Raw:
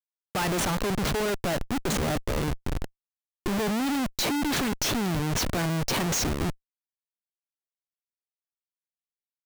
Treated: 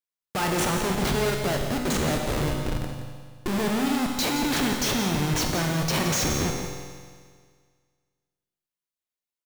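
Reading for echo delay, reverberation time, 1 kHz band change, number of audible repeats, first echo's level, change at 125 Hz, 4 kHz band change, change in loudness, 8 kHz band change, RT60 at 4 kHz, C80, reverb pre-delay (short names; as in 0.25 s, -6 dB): 0.172 s, 1.8 s, +2.5 dB, 1, -10.5 dB, +2.5 dB, +2.5 dB, +2.0 dB, +2.5 dB, 1.8 s, 4.0 dB, 26 ms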